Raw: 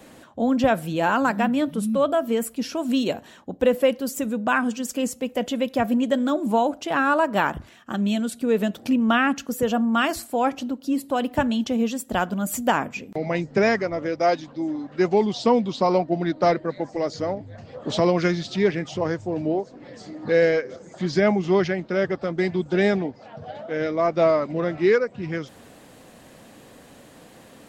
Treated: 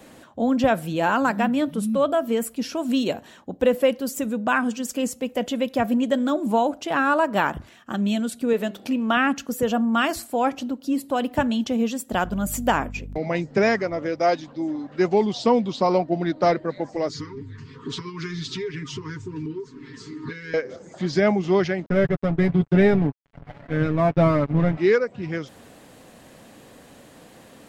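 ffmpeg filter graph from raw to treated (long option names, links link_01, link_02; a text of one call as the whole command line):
ffmpeg -i in.wav -filter_complex "[0:a]asettb=1/sr,asplit=3[link_01][link_02][link_03];[link_01]atrim=end=8.534[link_04];[link_02]atrim=start=8.53:end=9.17,asetpts=PTS-STARTPTS,afade=type=in:duration=0.004:curve=qsin,afade=type=out:start_time=0.636:duration=0.004:curve=qsin,bass=frequency=250:gain=-7,treble=frequency=4000:gain=-1,bandreject=frequency=197.7:width_type=h:width=4,bandreject=frequency=395.4:width_type=h:width=4,bandreject=frequency=593.1:width_type=h:width=4,bandreject=frequency=790.8:width_type=h:width=4,bandreject=frequency=988.5:width_type=h:width=4,bandreject=frequency=1186.2:width_type=h:width=4,bandreject=frequency=1383.9:width_type=h:width=4,bandreject=frequency=1581.6:width_type=h:width=4,bandreject=frequency=1779.3:width_type=h:width=4,bandreject=frequency=1977:width_type=h:width=4,bandreject=frequency=2174.7:width_type=h:width=4,bandreject=frequency=2372.4:width_type=h:width=4,bandreject=frequency=2570.1:width_type=h:width=4,bandreject=frequency=2767.8:width_type=h:width=4,bandreject=frequency=2965.5:width_type=h:width=4,bandreject=frequency=3163.2:width_type=h:width=4,bandreject=frequency=3360.9:width_type=h:width=4,bandreject=frequency=3558.6:width_type=h:width=4,bandreject=frequency=3756.3:width_type=h:width=4,bandreject=frequency=3954:width_type=h:width=4,bandreject=frequency=4151.7:width_type=h:width=4,bandreject=frequency=4349.4:width_type=h:width=4,bandreject=frequency=4547.1:width_type=h:width=4,bandreject=frequency=4744.8:width_type=h:width=4,bandreject=frequency=4942.5:width_type=h:width=4,bandreject=frequency=5140.2:width_type=h:width=4[link_05];[link_03]atrim=start=9.166[link_06];[link_04][link_05]acrossfade=duration=0.004:curve1=hsin:curve2=qsin[link_07];[link_07][link_06]acrossfade=duration=0.004:curve1=qsin:curve2=hsin,asettb=1/sr,asplit=3[link_08][link_09][link_10];[link_08]atrim=end=12.244[link_11];[link_09]atrim=start=12.24:end=13.18,asetpts=PTS-STARTPTS,afade=type=in:duration=0.004:curve=qsin,afade=type=out:start_time=0.936:duration=0.004:curve=qsin,agate=range=-33dB:threshold=-35dB:ratio=3:release=100:detection=peak,aeval=exprs='val(0)+0.02*(sin(2*PI*50*n/s)+sin(2*PI*2*50*n/s)/2+sin(2*PI*3*50*n/s)/3+sin(2*PI*4*50*n/s)/4+sin(2*PI*5*50*n/s)/5)':channel_layout=same[link_12];[link_10]atrim=start=13.176[link_13];[link_11][link_12]acrossfade=duration=0.004:curve1=hsin:curve2=qsin[link_14];[link_14][link_13]acrossfade=duration=0.004:curve1=qsin:curve2=hsin,asettb=1/sr,asplit=3[link_15][link_16][link_17];[link_15]atrim=end=17.094[link_18];[link_16]atrim=start=17.09:end=20.54,asetpts=PTS-STARTPTS,afade=type=in:duration=0.004:curve=qsin,afade=type=out:start_time=3.446:duration=0.004:curve=qsin,aecho=1:1:7.4:0.85,atrim=end_sample=152145,acompressor=threshold=-26dB:ratio=10:attack=3.2:release=140:knee=1:detection=peak,asuperstop=centerf=650:order=20:qfactor=1.5[link_19];[link_17]atrim=start=20.536[link_20];[link_18][link_19]acrossfade=duration=0.004:curve1=hsin:curve2=qsin[link_21];[link_21][link_20]acrossfade=duration=0.004:curve1=qsin:curve2=hsin,asettb=1/sr,asplit=3[link_22][link_23][link_24];[link_22]atrim=end=21.864[link_25];[link_23]atrim=start=21.86:end=24.77,asetpts=PTS-STARTPTS,afade=type=in:duration=0.004:curve=qsin,afade=type=out:start_time=2.906:duration=0.004:curve=qsin,aeval=exprs='sgn(val(0))*max(abs(val(0))-0.0178,0)':channel_layout=same,bass=frequency=250:gain=14,treble=frequency=4000:gain=-12,aecho=1:1:7.1:0.54,atrim=end_sample=128331[link_26];[link_24]atrim=start=24.766[link_27];[link_25][link_26]acrossfade=duration=0.004:curve1=hsin:curve2=qsin[link_28];[link_28][link_27]acrossfade=duration=0.004:curve1=qsin:curve2=hsin" out.wav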